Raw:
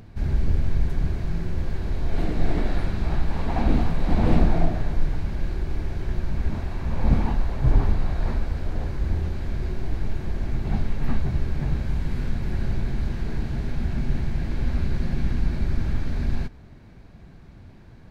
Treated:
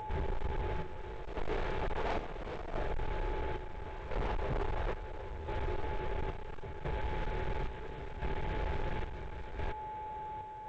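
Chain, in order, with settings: in parallel at +2.5 dB: compressor 12:1, threshold -25 dBFS, peak gain reduction 15.5 dB; on the sum: whine 860 Hz -38 dBFS; dynamic EQ 730 Hz, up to -3 dB, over -41 dBFS, Q 1.6; downsampling 8000 Hz; resonant low shelf 330 Hz -9 dB, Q 3; time stretch by phase-locked vocoder 0.59×; hard clip -28.5 dBFS, distortion -8 dB; chopper 0.73 Hz, depth 60%, duty 60%; reverse; upward compressor, threshold -37 dBFS; reverse; gain -2.5 dB; G.722 64 kbps 16000 Hz

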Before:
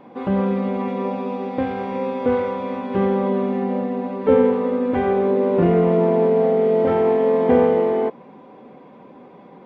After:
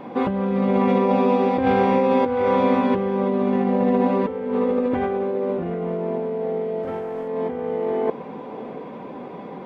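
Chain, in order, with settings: 6.83–7.28 sample leveller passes 1; negative-ratio compressor -25 dBFS, ratio -1; diffused feedback echo 0.672 s, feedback 46%, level -16 dB; gain +3 dB

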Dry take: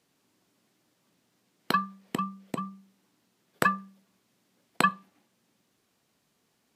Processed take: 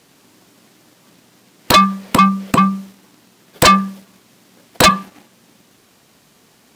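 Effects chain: sine folder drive 19 dB, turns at -4 dBFS; sample leveller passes 1; gain -1 dB

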